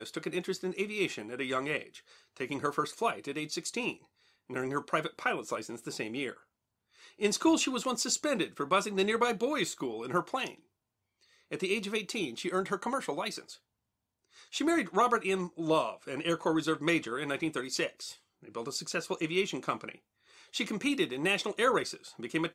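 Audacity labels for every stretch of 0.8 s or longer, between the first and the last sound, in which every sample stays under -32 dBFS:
6.300000	7.210000	silence
10.500000	11.530000	silence
13.380000	14.540000	silence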